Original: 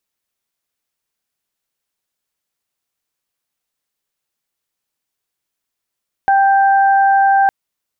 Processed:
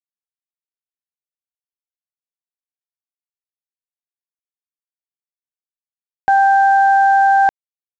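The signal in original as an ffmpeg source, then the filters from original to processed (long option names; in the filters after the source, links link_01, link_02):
-f lavfi -i "aevalsrc='0.355*sin(2*PI*786*t)+0.126*sin(2*PI*1572*t)':duration=1.21:sample_rate=44100"
-af "anlmdn=251,aresample=16000,acrusher=bits=6:mix=0:aa=0.000001,aresample=44100"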